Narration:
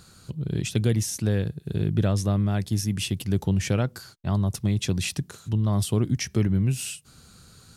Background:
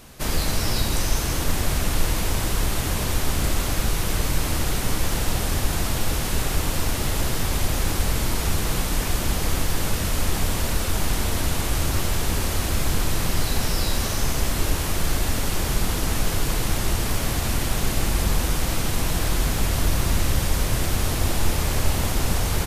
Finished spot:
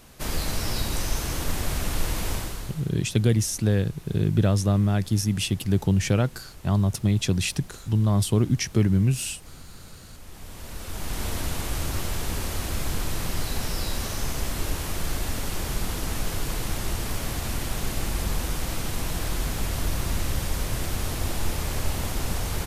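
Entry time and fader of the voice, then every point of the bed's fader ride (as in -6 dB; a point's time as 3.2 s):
2.40 s, +2.0 dB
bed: 2.34 s -4.5 dB
2.96 s -23.5 dB
10.15 s -23.5 dB
11.25 s -5.5 dB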